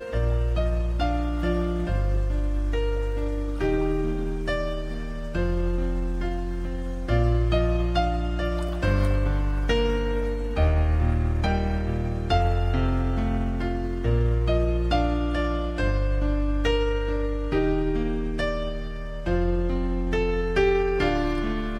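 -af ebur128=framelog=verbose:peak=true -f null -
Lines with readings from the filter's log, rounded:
Integrated loudness:
  I:         -25.9 LUFS
  Threshold: -35.9 LUFS
Loudness range:
  LRA:         3.1 LU
  Threshold: -46.0 LUFS
  LRA low:   -27.9 LUFS
  LRA high:  -24.8 LUFS
True peak:
  Peak:       -9.6 dBFS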